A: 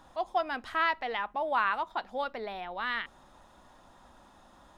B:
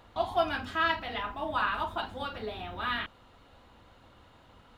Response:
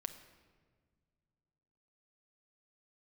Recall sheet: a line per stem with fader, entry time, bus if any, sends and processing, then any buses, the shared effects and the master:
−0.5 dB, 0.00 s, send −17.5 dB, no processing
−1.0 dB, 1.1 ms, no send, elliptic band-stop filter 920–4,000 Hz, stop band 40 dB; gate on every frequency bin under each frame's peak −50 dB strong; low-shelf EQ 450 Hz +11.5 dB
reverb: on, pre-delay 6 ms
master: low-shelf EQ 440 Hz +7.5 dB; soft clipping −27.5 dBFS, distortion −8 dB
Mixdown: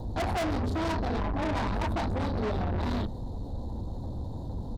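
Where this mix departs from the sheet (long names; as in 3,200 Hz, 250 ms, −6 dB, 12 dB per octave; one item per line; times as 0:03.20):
stem A −0.5 dB → −12.0 dB
stem B −1.0 dB → +9.5 dB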